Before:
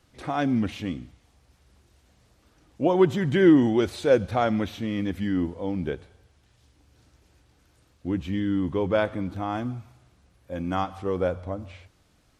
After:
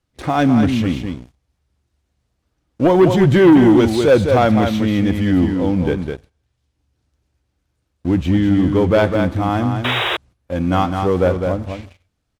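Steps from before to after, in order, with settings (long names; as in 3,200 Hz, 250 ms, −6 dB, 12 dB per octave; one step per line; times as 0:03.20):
on a send: single-tap delay 206 ms −6.5 dB
on the sum: sound drawn into the spectrogram noise, 0:09.84–0:10.17, 320–3,900 Hz −29 dBFS
low-shelf EQ 160 Hz +5 dB
leveller curve on the samples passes 2
noise gate −43 dBFS, range −11 dB
level +2 dB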